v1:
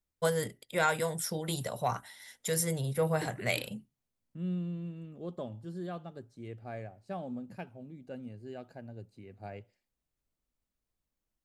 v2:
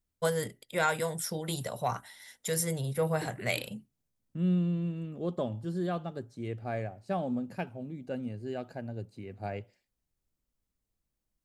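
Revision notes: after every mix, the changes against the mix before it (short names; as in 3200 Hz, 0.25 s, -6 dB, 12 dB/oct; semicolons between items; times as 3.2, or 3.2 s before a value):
second voice +7.0 dB; background: add air absorption 350 m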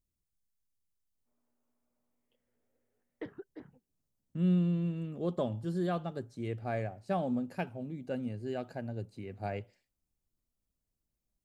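first voice: muted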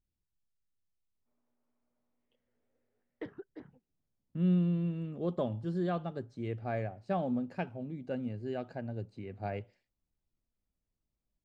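speech: add air absorption 110 m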